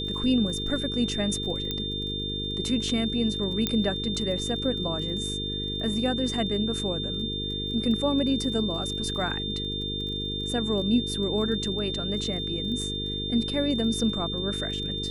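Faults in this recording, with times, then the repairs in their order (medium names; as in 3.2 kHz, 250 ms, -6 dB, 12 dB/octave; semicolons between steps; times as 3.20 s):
buzz 50 Hz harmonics 9 -34 dBFS
crackle 25 per s -36 dBFS
whine 3.6 kHz -31 dBFS
1.71 s: pop -15 dBFS
3.67 s: pop -9 dBFS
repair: de-click; de-hum 50 Hz, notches 9; band-stop 3.6 kHz, Q 30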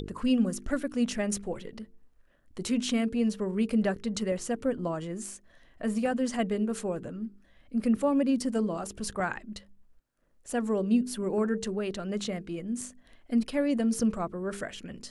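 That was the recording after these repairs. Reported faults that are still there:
nothing left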